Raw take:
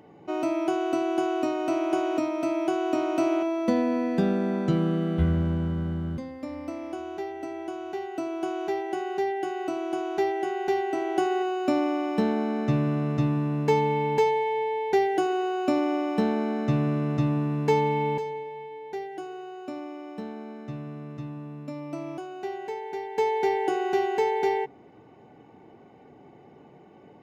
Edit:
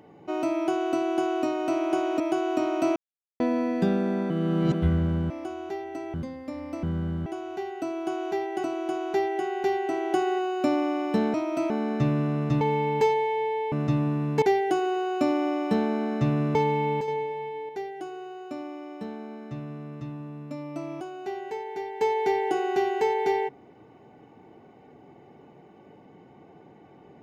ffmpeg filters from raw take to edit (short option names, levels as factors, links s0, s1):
-filter_complex "[0:a]asplit=19[s0][s1][s2][s3][s4][s5][s6][s7][s8][s9][s10][s11][s12][s13][s14][s15][s16][s17][s18];[s0]atrim=end=2.202[s19];[s1]atrim=start=2.558:end=3.32,asetpts=PTS-STARTPTS,afade=t=out:st=0.758:d=0.004:c=hsin[s20];[s2]atrim=start=3.32:end=3.76,asetpts=PTS-STARTPTS,volume=0[s21];[s3]atrim=start=3.76:end=4.662,asetpts=PTS-STARTPTS,afade=t=in:d=0.004:c=hsin[s22];[s4]atrim=start=4.658:end=5.102,asetpts=PTS-STARTPTS,areverse[s23];[s5]atrim=start=5.098:end=5.662[s24];[s6]atrim=start=6.778:end=7.622[s25];[s7]atrim=start=6.088:end=6.782[s26];[s8]atrim=start=5.658:end=6.092[s27];[s9]atrim=start=7.618:end=9.002[s28];[s10]atrim=start=9.678:end=12.382[s29];[s11]atrim=start=2.198:end=2.562[s30];[s12]atrim=start=12.378:end=13.292[s31];[s13]atrim=start=13.778:end=14.892[s32];[s14]atrim=start=17.018:end=17.722[s33];[s15]atrim=start=14.888:end=17.022[s34];[s16]atrim=start=17.718:end=18.252[s35];[s17]atrim=start=18.248:end=18.862,asetpts=PTS-STARTPTS,volume=1.78[s36];[s18]atrim=start=18.858[s37];[s20][s21][s22]concat=n=3:v=0:a=1[s38];[s19][s38]acrossfade=d=0.004:c1=hsin:c2=hsin[s39];[s39][s23]acrossfade=d=0.004:c1=hsin:c2=hsin[s40];[s40][s24]acrossfade=d=0.004:c1=hsin:c2=hsin[s41];[s41][s25]acrossfade=d=0.004:c1=hsin:c2=hsin[s42];[s42][s26]acrossfade=d=0.004:c1=hsin:c2=hsin[s43];[s43][s27]acrossfade=d=0.004:c1=hsin:c2=hsin[s44];[s44][s28]acrossfade=d=0.004:c1=hsin:c2=hsin[s45];[s45][s29]acrossfade=d=0.004:c1=hsin:c2=hsin[s46];[s46][s30]acrossfade=d=0.004:c1=hsin:c2=hsin[s47];[s47][s31]acrossfade=d=0.004:c1=hsin:c2=hsin[s48];[s48][s32]acrossfade=d=0.004:c1=hsin:c2=hsin[s49];[s49][s33]acrossfade=d=0.004:c1=hsin:c2=hsin[s50];[s50][s34]acrossfade=d=0.004:c1=hsin:c2=hsin[s51];[s51][s35]acrossfade=d=0.004:c1=hsin:c2=hsin[s52];[s52][s36]acrossfade=d=0.004:c1=hsin:c2=hsin[s53];[s53][s37]acrossfade=d=0.004:c1=hsin:c2=hsin"